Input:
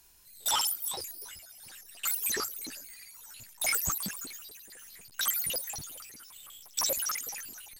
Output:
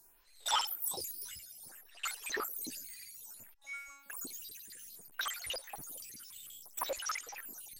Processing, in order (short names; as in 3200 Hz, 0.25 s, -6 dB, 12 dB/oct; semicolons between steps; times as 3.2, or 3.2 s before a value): 3.54–4.1 resonator 280 Hz, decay 0.68 s, mix 100%; photocell phaser 0.6 Hz